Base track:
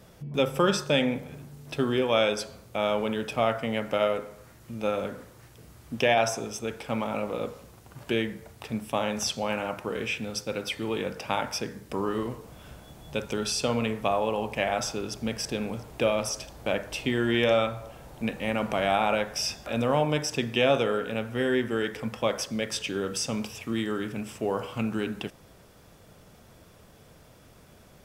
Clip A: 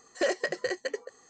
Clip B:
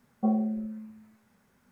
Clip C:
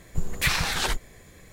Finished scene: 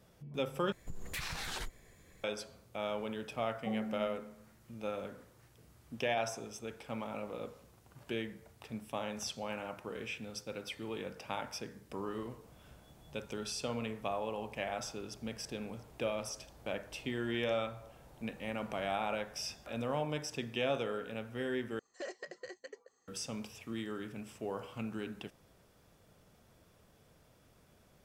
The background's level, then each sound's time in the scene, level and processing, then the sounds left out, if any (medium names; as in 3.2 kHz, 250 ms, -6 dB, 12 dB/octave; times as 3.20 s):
base track -11 dB
0.72 s: replace with C -10.5 dB + compression, threshold -25 dBFS
3.43 s: add B -10 dB
21.79 s: replace with A -16 dB